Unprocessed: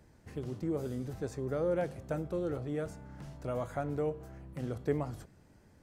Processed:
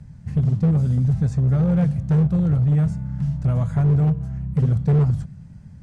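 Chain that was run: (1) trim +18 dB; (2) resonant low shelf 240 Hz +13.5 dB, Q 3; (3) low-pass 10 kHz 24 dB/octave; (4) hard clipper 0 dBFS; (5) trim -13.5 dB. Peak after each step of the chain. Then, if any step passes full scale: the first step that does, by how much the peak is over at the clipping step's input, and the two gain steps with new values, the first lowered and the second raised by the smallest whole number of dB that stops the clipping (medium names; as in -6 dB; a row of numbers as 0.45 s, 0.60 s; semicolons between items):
-0.5 dBFS, +7.0 dBFS, +7.0 dBFS, 0.0 dBFS, -13.5 dBFS; step 2, 7.0 dB; step 1 +11 dB, step 5 -6.5 dB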